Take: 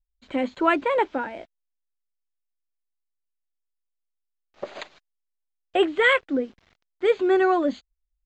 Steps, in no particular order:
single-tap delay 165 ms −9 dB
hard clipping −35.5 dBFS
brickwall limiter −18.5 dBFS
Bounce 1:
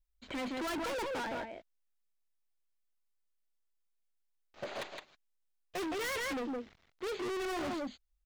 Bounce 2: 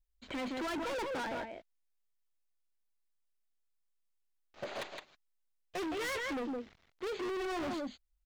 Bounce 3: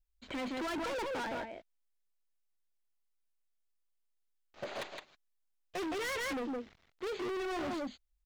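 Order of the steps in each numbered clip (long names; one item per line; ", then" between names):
single-tap delay, then hard clipping, then brickwall limiter
brickwall limiter, then single-tap delay, then hard clipping
single-tap delay, then brickwall limiter, then hard clipping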